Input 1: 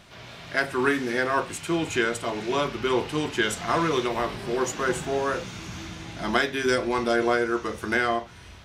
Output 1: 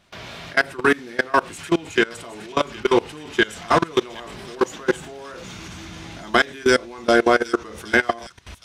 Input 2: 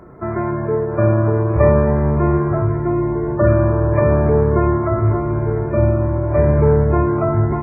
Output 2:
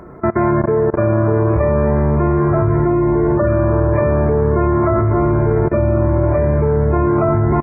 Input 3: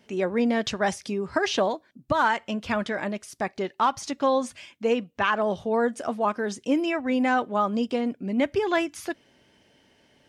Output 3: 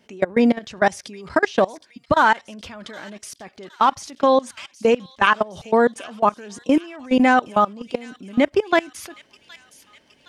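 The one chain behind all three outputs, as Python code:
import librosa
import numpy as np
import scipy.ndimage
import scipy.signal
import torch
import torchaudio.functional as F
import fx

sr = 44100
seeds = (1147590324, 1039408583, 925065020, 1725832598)

y = fx.peak_eq(x, sr, hz=120.0, db=-4.5, octaves=0.31)
y = fx.level_steps(y, sr, step_db=23)
y = fx.echo_wet_highpass(y, sr, ms=767, feedback_pct=58, hz=3200.0, wet_db=-12.0)
y = y * librosa.db_to_amplitude(9.0)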